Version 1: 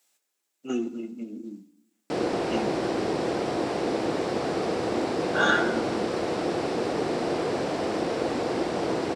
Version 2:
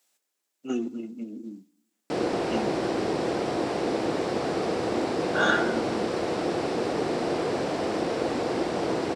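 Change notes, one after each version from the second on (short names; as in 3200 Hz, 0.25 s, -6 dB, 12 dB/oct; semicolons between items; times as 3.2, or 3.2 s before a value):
speech: send -8.0 dB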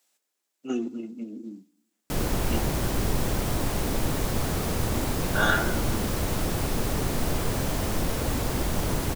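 background: remove speaker cabinet 220–6700 Hz, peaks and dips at 340 Hz +8 dB, 480 Hz +7 dB, 720 Hz +6 dB, 3300 Hz -3 dB, 6500 Hz -9 dB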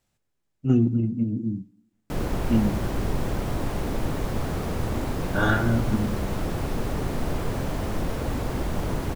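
speech: remove Bessel high-pass 410 Hz, order 6; master: add high shelf 3400 Hz -11 dB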